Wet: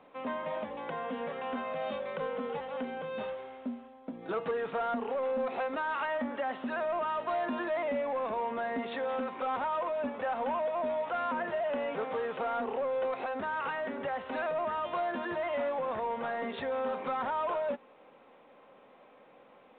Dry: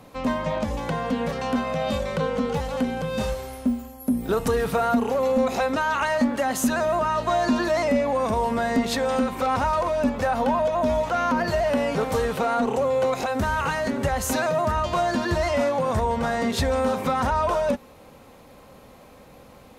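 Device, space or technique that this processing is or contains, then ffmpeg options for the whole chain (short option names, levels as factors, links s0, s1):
telephone: -filter_complex "[0:a]asettb=1/sr,asplit=3[s0][s1][s2];[s0]atrim=end=4.064[s3];[s1]atrim=start=4.06:end=4.51,asetpts=PTS-STARTPTS,afade=t=in:d=0.004:c=qsin,afade=t=out:st=0.446:d=0.004:c=qsin,aecho=1:1:6.1:0.65,atrim=end_sample=19845[s4];[s2]atrim=start=4.506[s5];[s3][s4]acrossfade=d=0.004:c1=hsin:c2=qsin[s6];[s6][s5]acrossfade=d=0.004:c1=qsin:c2=hsin,highpass=330,lowpass=3200,asoftclip=type=tanh:threshold=0.141,volume=0.422" -ar 8000 -c:a pcm_mulaw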